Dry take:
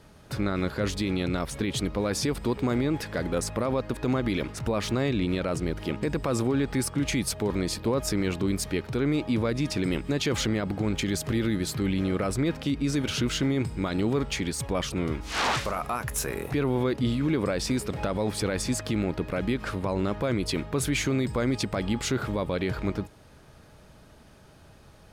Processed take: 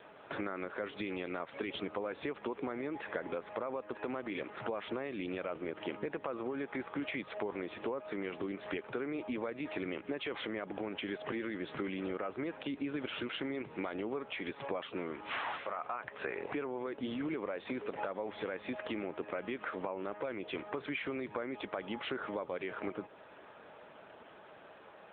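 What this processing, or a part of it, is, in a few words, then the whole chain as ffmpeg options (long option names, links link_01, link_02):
voicemail: -filter_complex "[0:a]asettb=1/sr,asplit=3[link_01][link_02][link_03];[link_01]atrim=end=2.894[link_04];[link_02]atrim=start=2.89:end=3.88,asetpts=PTS-STARTPTS,afade=type=in:duration=0.004:curve=qsin,afade=type=out:start_time=0.986:duration=0.004:curve=qsin,lowpass=frequency=9000:width=0.5412,lowpass=frequency=9000:width=1.3066[link_05];[link_03]atrim=start=3.876[link_06];[link_04][link_05]acrossfade=duration=0.004:curve1=hsin:curve2=qsin[link_07];[link_07][link_06]acrossfade=duration=0.004:curve1=qsin:curve2=hsin,highpass=420,lowpass=3000,acompressor=threshold=-39dB:ratio=12,volume=5.5dB" -ar 8000 -c:a libopencore_amrnb -b:a 7950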